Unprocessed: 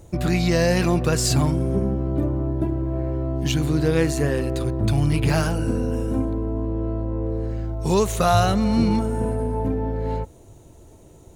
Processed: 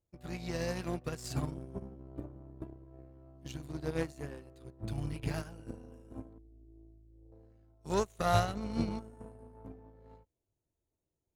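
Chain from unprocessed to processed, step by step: 6.38–7.32 s: spectral contrast enhancement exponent 2.8; Chebyshev shaper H 4 -23 dB, 7 -25 dB, 8 -32 dB, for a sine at -5 dBFS; upward expansion 2.5:1, over -33 dBFS; trim -8 dB

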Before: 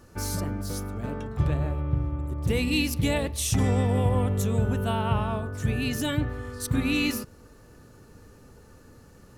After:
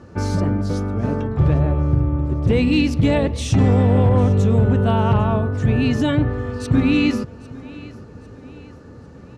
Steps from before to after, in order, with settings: high-pass 73 Hz; tilt shelf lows +3.5 dB; in parallel at -2 dB: peak limiter -20 dBFS, peak gain reduction 10 dB; on the sum: hard clipper -12.5 dBFS, distortion -22 dB; distance through air 110 m; on a send: feedback delay 800 ms, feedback 43%, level -20 dB; on the sum: trim +4 dB

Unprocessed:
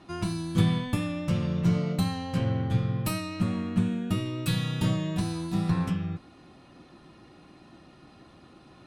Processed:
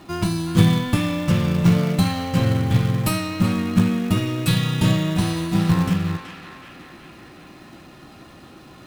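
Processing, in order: in parallel at -5 dB: companded quantiser 4-bit; on the sum: band-passed feedback delay 375 ms, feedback 65%, band-pass 2 kHz, level -5.5 dB; trim +4 dB

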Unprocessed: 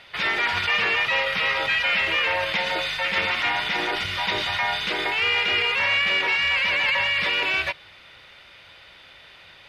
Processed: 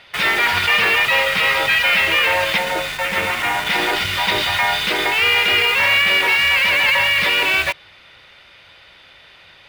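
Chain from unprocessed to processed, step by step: 2.58–3.67 s: treble shelf 3 kHz -11 dB; in parallel at -3.5 dB: bit crusher 5-bit; on the sum: trim +2 dB

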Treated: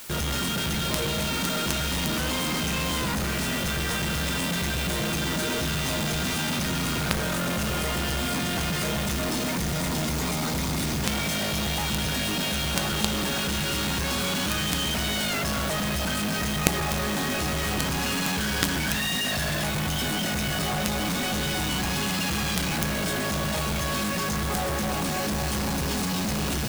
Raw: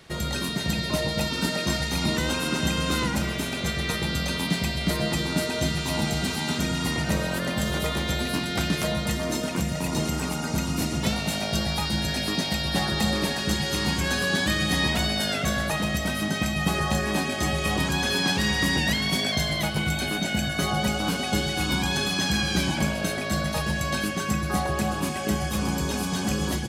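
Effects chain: formant shift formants -3 st; companded quantiser 2-bit; added noise white -40 dBFS; trim -1.5 dB

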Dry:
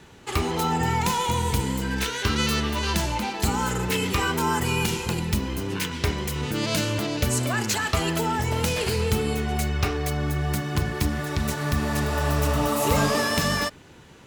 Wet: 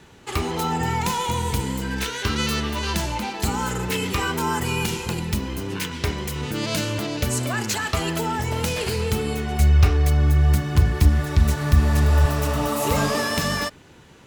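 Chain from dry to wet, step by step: 9.59–12.26 s: peaking EQ 64 Hz +14 dB 1.4 oct

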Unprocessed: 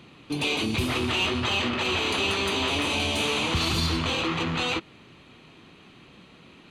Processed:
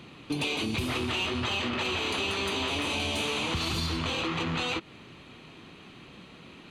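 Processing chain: compression, threshold -29 dBFS, peak gain reduction 8.5 dB; trim +2 dB

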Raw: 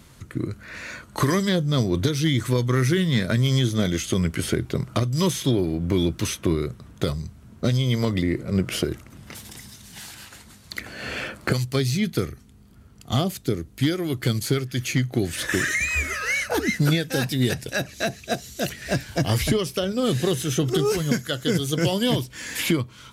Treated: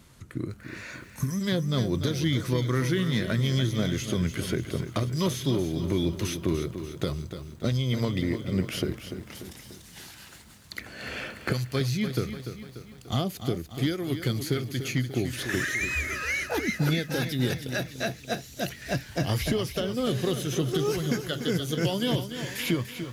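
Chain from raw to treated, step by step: dynamic bell 8.2 kHz, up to -7 dB, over -50 dBFS, Q 2.9; time-frequency box 1.05–1.41 s, 260–5100 Hz -17 dB; bit-crushed delay 293 ms, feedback 55%, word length 8-bit, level -9.5 dB; trim -5 dB

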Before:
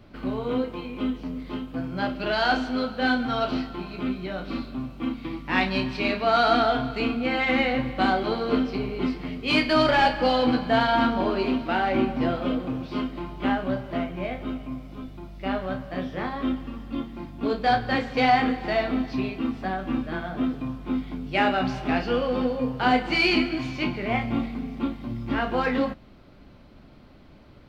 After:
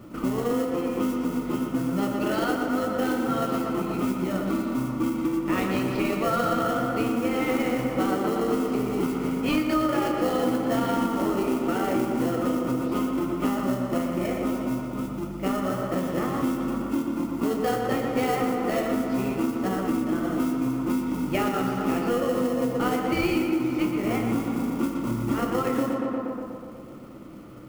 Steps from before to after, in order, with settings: bass shelf 110 Hz -11.5 dB; in parallel at -3 dB: sample-rate reducer 1.2 kHz, jitter 0%; on the sum: modulation noise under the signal 16 dB; graphic EQ with 31 bands 125 Hz +7 dB, 200 Hz +7 dB, 315 Hz +11 dB, 500 Hz +5 dB, 1.25 kHz +12 dB, 4 kHz -6 dB; on a send: tape echo 120 ms, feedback 73%, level -5 dB, low-pass 2.8 kHz; on the sum: compression 4:1, threshold -23 dBFS, peak gain reduction 15 dB; band-stop 1.6 kHz, Q 6.2

